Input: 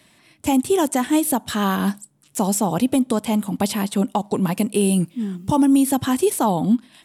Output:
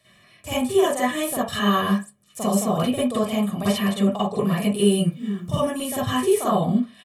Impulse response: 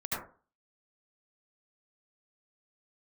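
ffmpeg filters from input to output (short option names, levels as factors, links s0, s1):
-filter_complex "[0:a]aecho=1:1:1.7:0.8[s0];[1:a]atrim=start_sample=2205,asetrate=74970,aresample=44100[s1];[s0][s1]afir=irnorm=-1:irlink=0,volume=0.75"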